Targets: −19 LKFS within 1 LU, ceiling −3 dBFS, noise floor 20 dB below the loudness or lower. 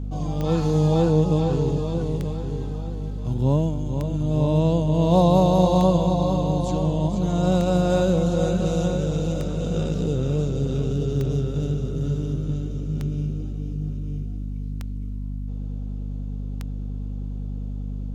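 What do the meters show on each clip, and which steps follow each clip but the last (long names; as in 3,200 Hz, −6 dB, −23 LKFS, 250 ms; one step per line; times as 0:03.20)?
number of clicks 10; mains hum 50 Hz; hum harmonics up to 250 Hz; level of the hum −26 dBFS; integrated loudness −23.5 LKFS; sample peak −6.0 dBFS; target loudness −19.0 LKFS
→ click removal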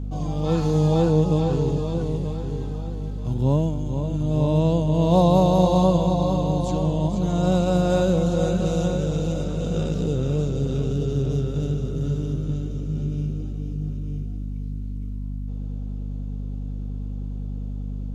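number of clicks 0; mains hum 50 Hz; hum harmonics up to 250 Hz; level of the hum −26 dBFS
→ mains-hum notches 50/100/150/200/250 Hz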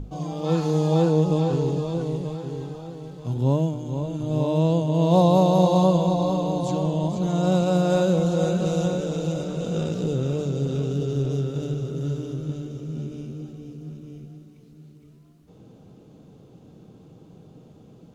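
mains hum none found; integrated loudness −23.5 LKFS; sample peak −6.5 dBFS; target loudness −19.0 LKFS
→ level +4.5 dB
brickwall limiter −3 dBFS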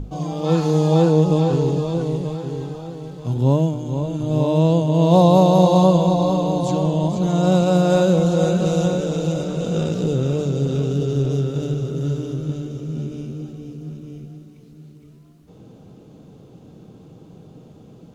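integrated loudness −19.0 LKFS; sample peak −3.0 dBFS; background noise floor −46 dBFS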